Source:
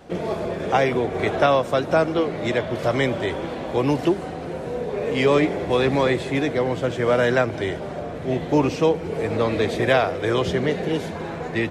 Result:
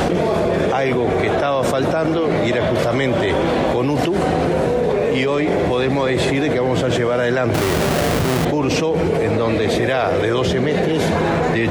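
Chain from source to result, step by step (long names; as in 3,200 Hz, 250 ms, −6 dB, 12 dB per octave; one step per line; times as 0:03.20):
0:07.54–0:08.45: each half-wave held at its own peak
envelope flattener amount 100%
level −3.5 dB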